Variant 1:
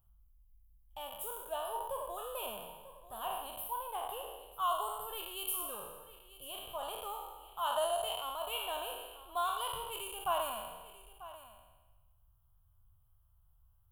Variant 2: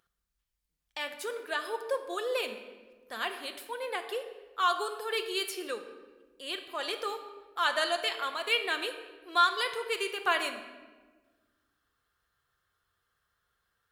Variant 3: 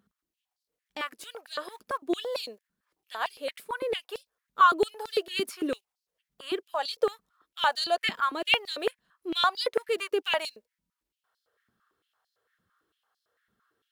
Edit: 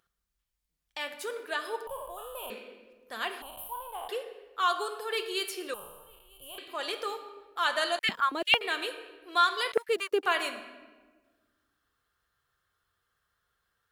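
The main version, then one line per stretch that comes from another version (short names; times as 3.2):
2
1.87–2.5 from 1
3.42–4.09 from 1
5.74–6.58 from 1
7.99–8.61 from 3
9.72–10.23 from 3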